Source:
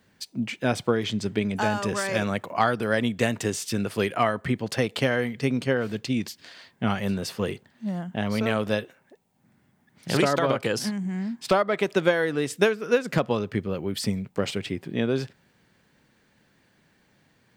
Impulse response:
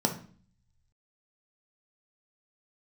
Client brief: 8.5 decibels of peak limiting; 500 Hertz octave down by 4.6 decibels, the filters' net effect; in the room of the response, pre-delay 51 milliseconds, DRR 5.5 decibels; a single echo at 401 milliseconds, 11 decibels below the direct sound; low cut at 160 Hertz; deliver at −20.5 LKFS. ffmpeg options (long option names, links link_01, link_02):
-filter_complex "[0:a]highpass=160,equalizer=frequency=500:width_type=o:gain=-5.5,alimiter=limit=-16dB:level=0:latency=1,aecho=1:1:401:0.282,asplit=2[link_01][link_02];[1:a]atrim=start_sample=2205,adelay=51[link_03];[link_02][link_03]afir=irnorm=-1:irlink=0,volume=-15dB[link_04];[link_01][link_04]amix=inputs=2:normalize=0,volume=6dB"